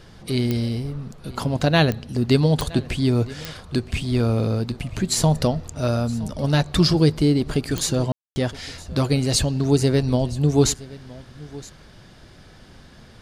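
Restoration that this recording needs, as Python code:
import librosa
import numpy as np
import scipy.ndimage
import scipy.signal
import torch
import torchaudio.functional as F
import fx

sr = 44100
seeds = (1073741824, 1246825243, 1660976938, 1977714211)

y = fx.fix_declick_ar(x, sr, threshold=10.0)
y = fx.fix_ambience(y, sr, seeds[0], print_start_s=12.08, print_end_s=12.58, start_s=8.12, end_s=8.36)
y = fx.fix_echo_inverse(y, sr, delay_ms=968, level_db=-20.0)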